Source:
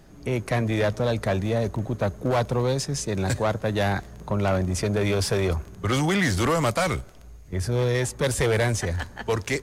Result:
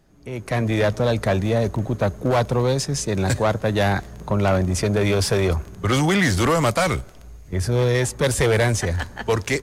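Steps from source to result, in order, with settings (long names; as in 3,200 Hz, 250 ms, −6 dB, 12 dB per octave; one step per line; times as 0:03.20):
automatic gain control gain up to 13.5 dB
level −8 dB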